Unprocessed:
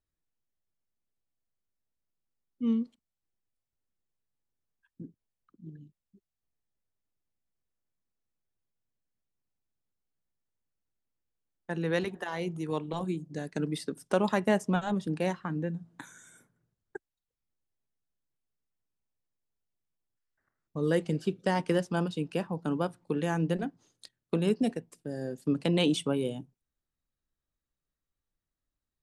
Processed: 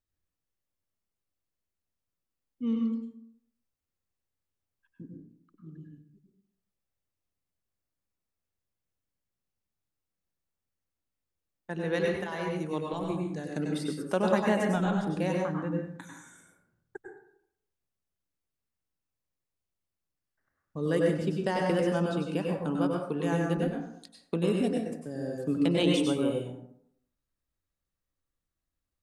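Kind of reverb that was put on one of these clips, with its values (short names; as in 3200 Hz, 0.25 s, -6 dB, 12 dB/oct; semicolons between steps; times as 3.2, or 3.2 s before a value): plate-style reverb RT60 0.68 s, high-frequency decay 0.5×, pre-delay 85 ms, DRR -0.5 dB; gain -2 dB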